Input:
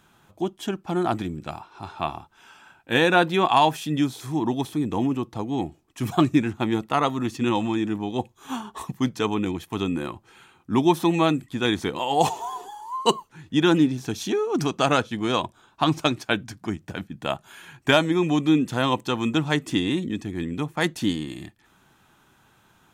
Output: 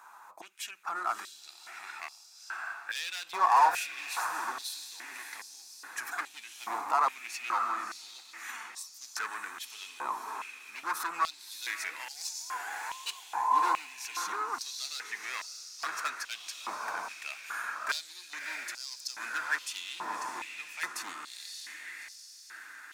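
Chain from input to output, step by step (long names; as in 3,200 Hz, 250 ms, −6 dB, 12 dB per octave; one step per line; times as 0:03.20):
hard clipping −20 dBFS, distortion −8 dB
brickwall limiter −29 dBFS, peak gain reduction 9 dB
parametric band 3,200 Hz −15 dB 0.47 octaves
feedback delay with all-pass diffusion 608 ms, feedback 56%, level −5.5 dB
high-pass on a step sequencer 2.4 Hz 980–5,000 Hz
level +3 dB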